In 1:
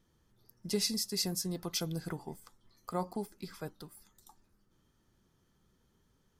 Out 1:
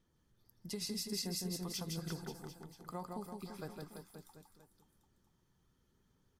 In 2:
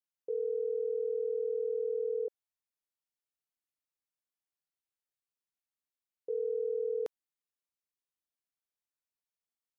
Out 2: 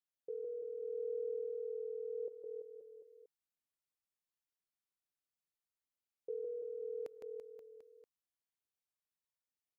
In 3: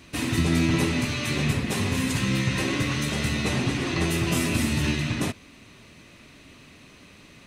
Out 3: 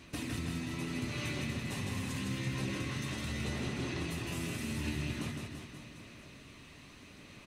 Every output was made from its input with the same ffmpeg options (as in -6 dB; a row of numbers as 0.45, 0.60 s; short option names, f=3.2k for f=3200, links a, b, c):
-filter_complex "[0:a]acompressor=threshold=-31dB:ratio=6,aphaser=in_gain=1:out_gain=1:delay=1.1:decay=0.23:speed=0.82:type=sinusoidal,asplit=2[a][b];[b]aecho=0:1:160|336|529.6|742.6|976.8:0.631|0.398|0.251|0.158|0.1[c];[a][c]amix=inputs=2:normalize=0,volume=-6.5dB"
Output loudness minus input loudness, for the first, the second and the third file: -6.5, -9.0, -12.5 LU